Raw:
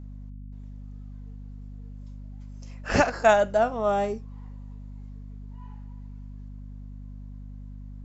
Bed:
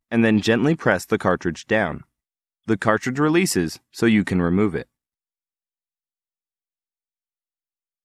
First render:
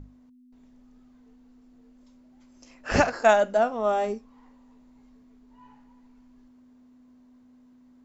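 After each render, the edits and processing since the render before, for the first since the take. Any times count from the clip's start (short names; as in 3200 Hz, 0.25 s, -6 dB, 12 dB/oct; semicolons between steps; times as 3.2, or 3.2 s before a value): notches 50/100/150/200 Hz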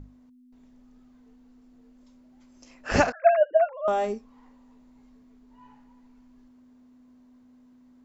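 3.12–3.88 sine-wave speech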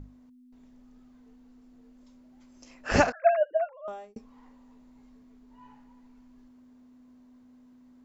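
2.92–4.16 fade out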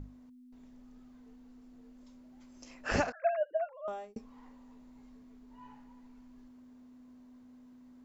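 compressor 2:1, threshold -33 dBFS, peak gain reduction 10 dB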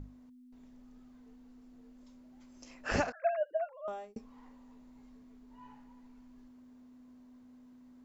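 gain -1 dB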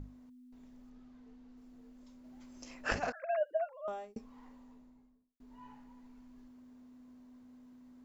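0.9–1.57 LPF 5900 Hz; 2.24–3.39 negative-ratio compressor -33 dBFS, ratio -0.5; 4.54–5.4 studio fade out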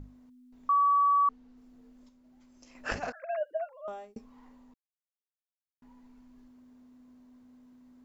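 0.69–1.29 bleep 1140 Hz -20.5 dBFS; 2.09–2.75 gain -6 dB; 4.74–5.82 mute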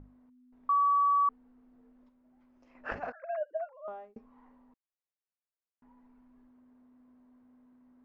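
LPF 1600 Hz 12 dB/oct; low shelf 350 Hz -7.5 dB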